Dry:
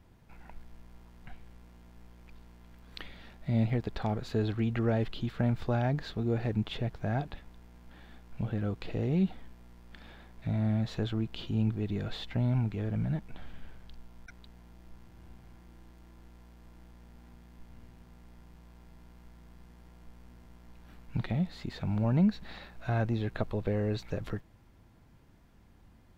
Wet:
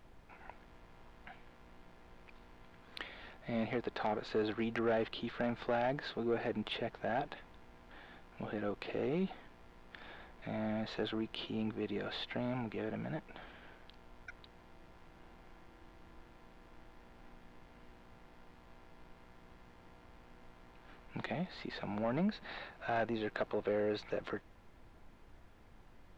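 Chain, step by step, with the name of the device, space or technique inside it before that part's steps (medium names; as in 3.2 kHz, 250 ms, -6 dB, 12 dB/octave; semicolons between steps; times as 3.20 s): aircraft cabin announcement (band-pass 360–3500 Hz; saturation -28.5 dBFS, distortion -15 dB; brown noise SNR 17 dB); trim +3 dB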